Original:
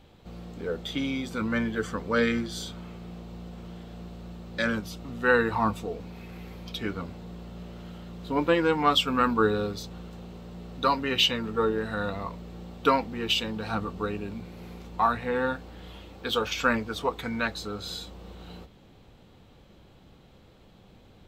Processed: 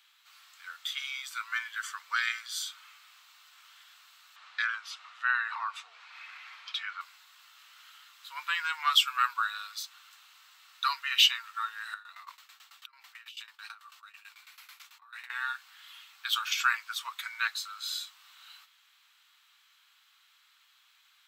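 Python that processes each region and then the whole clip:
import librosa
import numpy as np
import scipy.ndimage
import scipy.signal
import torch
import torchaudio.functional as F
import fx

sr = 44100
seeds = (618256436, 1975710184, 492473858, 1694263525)

y = fx.chain(x, sr, fx.spacing_loss(db_at_10k=24),
    fx.env_flatten(amount_pct=50), at=(4.36, 7.01))
y = fx.chain(y, sr, fx.over_compress(threshold_db=-37.0, ratio=-1.0),
    fx.tremolo_shape(shape='saw_down', hz=9.1, depth_pct=90),
    fx.brickwall_highpass(low_hz=460.0), at=(11.94, 15.3))
y = scipy.signal.sosfilt(scipy.signal.butter(6, 1200.0, 'highpass', fs=sr, output='sos'), y)
y = fx.high_shelf(y, sr, hz=7100.0, db=7.5)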